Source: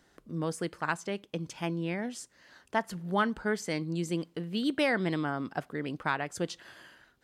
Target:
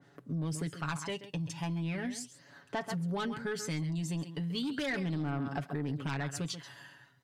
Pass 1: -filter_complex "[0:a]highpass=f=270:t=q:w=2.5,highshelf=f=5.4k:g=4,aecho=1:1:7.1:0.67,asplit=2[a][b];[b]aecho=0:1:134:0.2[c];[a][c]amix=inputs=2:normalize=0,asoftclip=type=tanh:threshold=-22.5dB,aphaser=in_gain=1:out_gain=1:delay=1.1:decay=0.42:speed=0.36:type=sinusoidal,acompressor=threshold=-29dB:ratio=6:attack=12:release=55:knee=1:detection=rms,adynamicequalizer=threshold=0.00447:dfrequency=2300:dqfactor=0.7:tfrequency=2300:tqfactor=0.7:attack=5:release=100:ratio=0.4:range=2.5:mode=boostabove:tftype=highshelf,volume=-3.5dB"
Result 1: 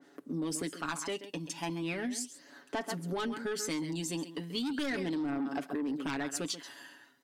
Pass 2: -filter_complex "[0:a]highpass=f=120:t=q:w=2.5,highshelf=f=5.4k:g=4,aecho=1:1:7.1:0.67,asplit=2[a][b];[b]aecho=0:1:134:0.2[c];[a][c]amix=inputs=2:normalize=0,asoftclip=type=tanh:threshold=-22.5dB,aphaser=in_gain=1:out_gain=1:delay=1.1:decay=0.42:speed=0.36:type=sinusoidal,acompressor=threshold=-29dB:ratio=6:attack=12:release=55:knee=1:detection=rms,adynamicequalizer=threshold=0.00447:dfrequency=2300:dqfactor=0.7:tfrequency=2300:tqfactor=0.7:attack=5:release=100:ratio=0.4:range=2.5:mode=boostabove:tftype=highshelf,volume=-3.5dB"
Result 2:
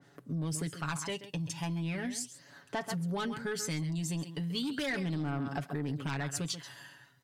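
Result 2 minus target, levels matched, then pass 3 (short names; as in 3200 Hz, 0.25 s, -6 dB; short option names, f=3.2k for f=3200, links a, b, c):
8000 Hz band +4.5 dB
-filter_complex "[0:a]highpass=f=120:t=q:w=2.5,highshelf=f=5.4k:g=-3.5,aecho=1:1:7.1:0.67,asplit=2[a][b];[b]aecho=0:1:134:0.2[c];[a][c]amix=inputs=2:normalize=0,asoftclip=type=tanh:threshold=-22.5dB,aphaser=in_gain=1:out_gain=1:delay=1.1:decay=0.42:speed=0.36:type=sinusoidal,acompressor=threshold=-29dB:ratio=6:attack=12:release=55:knee=1:detection=rms,adynamicequalizer=threshold=0.00447:dfrequency=2300:dqfactor=0.7:tfrequency=2300:tqfactor=0.7:attack=5:release=100:ratio=0.4:range=2.5:mode=boostabove:tftype=highshelf,volume=-3.5dB"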